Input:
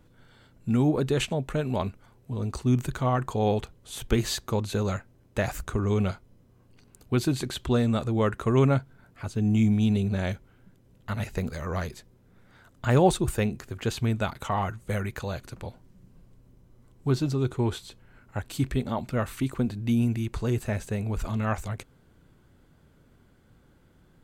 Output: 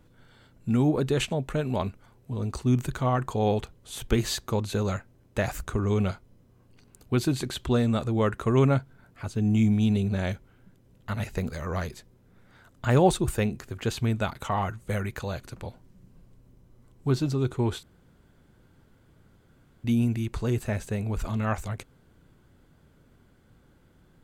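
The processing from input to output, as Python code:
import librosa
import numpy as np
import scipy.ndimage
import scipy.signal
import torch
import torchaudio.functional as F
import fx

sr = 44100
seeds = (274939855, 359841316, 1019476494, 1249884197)

y = fx.edit(x, sr, fx.room_tone_fill(start_s=17.83, length_s=2.01), tone=tone)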